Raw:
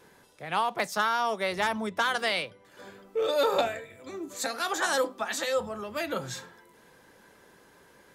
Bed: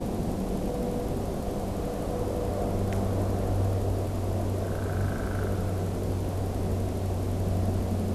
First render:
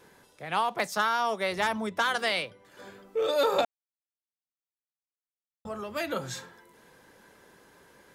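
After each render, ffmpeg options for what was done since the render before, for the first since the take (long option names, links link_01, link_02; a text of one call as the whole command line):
ffmpeg -i in.wav -filter_complex "[0:a]asplit=3[link_01][link_02][link_03];[link_01]atrim=end=3.65,asetpts=PTS-STARTPTS,afade=type=out:start_time=3.646:duration=0.004:curve=hsin[link_04];[link_02]atrim=start=3.65:end=5.65,asetpts=PTS-STARTPTS,volume=0[link_05];[link_03]atrim=start=5.65,asetpts=PTS-STARTPTS,afade=type=in:duration=0.004:curve=hsin[link_06];[link_04][link_05][link_06]concat=n=3:v=0:a=1" out.wav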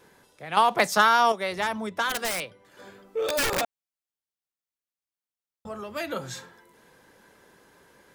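ffmpeg -i in.wav -filter_complex "[0:a]asplit=3[link_01][link_02][link_03];[link_01]afade=type=out:start_time=2.09:duration=0.02[link_04];[link_02]aeval=exprs='(mod(9.44*val(0)+1,2)-1)/9.44':channel_layout=same,afade=type=in:start_time=2.09:duration=0.02,afade=type=out:start_time=3.6:duration=0.02[link_05];[link_03]afade=type=in:start_time=3.6:duration=0.02[link_06];[link_04][link_05][link_06]amix=inputs=3:normalize=0,asplit=3[link_07][link_08][link_09];[link_07]atrim=end=0.572[link_10];[link_08]atrim=start=0.568:end=1.322,asetpts=PTS-STARTPTS,volume=7.5dB[link_11];[link_09]atrim=start=1.318[link_12];[link_10][link_11]acrossfade=duration=0.004:curve1=hsin:curve2=hsin[link_13];[link_13][link_12]acrossfade=duration=0.004:curve1=hsin:curve2=hsin" out.wav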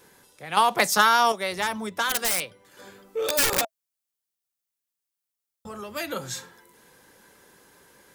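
ffmpeg -i in.wav -af "highshelf=frequency=5200:gain=9.5,bandreject=frequency=650:width=16" out.wav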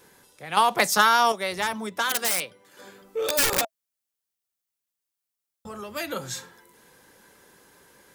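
ffmpeg -i in.wav -filter_complex "[0:a]asettb=1/sr,asplit=3[link_01][link_02][link_03];[link_01]atrim=end=1.734[link_04];[link_02]atrim=start=1.73:end=3.02,asetpts=PTS-STARTPTS,afade=type=in:duration=0.004:curve=qsin,afade=type=out:start_time=1.286:duration=0.004:curve=qsin,highpass=140[link_05];[link_03]atrim=start=3.016[link_06];[link_04][link_05]acrossfade=duration=0.004:curve1=hsin:curve2=qsin[link_07];[link_07][link_06]acrossfade=duration=0.004:curve1=qsin:curve2=hsin" out.wav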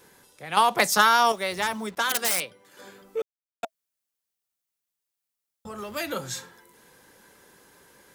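ffmpeg -i in.wav -filter_complex "[0:a]asettb=1/sr,asplit=3[link_01][link_02][link_03];[link_01]atrim=end=1.054[link_04];[link_02]atrim=start=1.05:end=1.97,asetpts=PTS-STARTPTS,afade=type=in:duration=0.004:curve=qsin,afade=type=out:start_time=0.916:duration=0.004:curve=qsin,acrusher=bits=7:mix=0:aa=0.5[link_05];[link_03]atrim=start=1.966[link_06];[link_04][link_05]acrossfade=duration=0.004:curve1=hsin:curve2=qsin[link_07];[link_07][link_06]acrossfade=duration=0.004:curve1=qsin:curve2=hsin,asettb=1/sr,asplit=3[link_08][link_09][link_10];[link_08]atrim=end=5.784[link_11];[link_09]atrim=start=5.78:end=6.21,asetpts=PTS-STARTPTS,afade=type=in:duration=0.004:curve=qsin,afade=type=out:start_time=0.426:duration=0.004:curve=qsin,aeval=exprs='val(0)+0.5*0.00531*sgn(val(0))':channel_layout=same[link_12];[link_10]atrim=start=6.206[link_13];[link_11][link_12]acrossfade=duration=0.004:curve1=hsin:curve2=qsin[link_14];[link_14][link_13]acrossfade=duration=0.004:curve1=qsin:curve2=hsin,asplit=3[link_15][link_16][link_17];[link_15]atrim=end=3.22,asetpts=PTS-STARTPTS,afade=type=out:start_time=3.216:duration=0.004:curve=hsin[link_18];[link_16]atrim=start=3.22:end=3.63,asetpts=PTS-STARTPTS,volume=0[link_19];[link_17]atrim=start=3.63,asetpts=PTS-STARTPTS,afade=type=in:duration=0.004:curve=hsin[link_20];[link_18][link_19][link_20]concat=n=3:v=0:a=1" out.wav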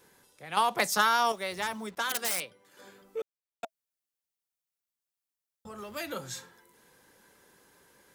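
ffmpeg -i in.wav -af "volume=-6dB" out.wav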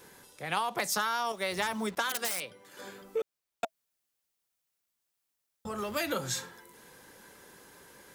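ffmpeg -i in.wav -filter_complex "[0:a]asplit=2[link_01][link_02];[link_02]alimiter=limit=-20dB:level=0:latency=1,volume=2dB[link_03];[link_01][link_03]amix=inputs=2:normalize=0,acompressor=threshold=-27dB:ratio=10" out.wav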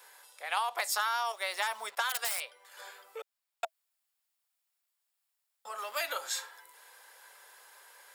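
ffmpeg -i in.wav -af "highpass=frequency=640:width=0.5412,highpass=frequency=640:width=1.3066,bandreject=frequency=6100:width=9.4" out.wav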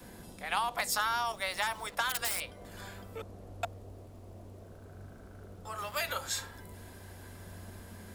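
ffmpeg -i in.wav -i bed.wav -filter_complex "[1:a]volume=-21dB[link_01];[0:a][link_01]amix=inputs=2:normalize=0" out.wav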